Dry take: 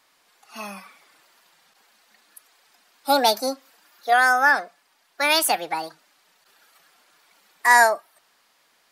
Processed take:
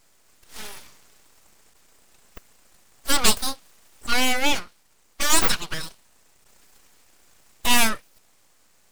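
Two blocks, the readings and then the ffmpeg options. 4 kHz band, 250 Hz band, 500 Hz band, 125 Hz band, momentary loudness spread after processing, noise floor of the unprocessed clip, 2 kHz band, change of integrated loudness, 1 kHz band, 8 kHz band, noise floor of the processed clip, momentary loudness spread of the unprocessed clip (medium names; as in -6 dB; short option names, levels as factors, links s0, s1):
+3.0 dB, +3.0 dB, -8.5 dB, no reading, 20 LU, -64 dBFS, -7.0 dB, -2.5 dB, -8.5 dB, +5.5 dB, -59 dBFS, 21 LU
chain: -af "superequalizer=13b=3.55:14b=2.51:16b=2.51,aeval=exprs='abs(val(0))':c=same,volume=0.891"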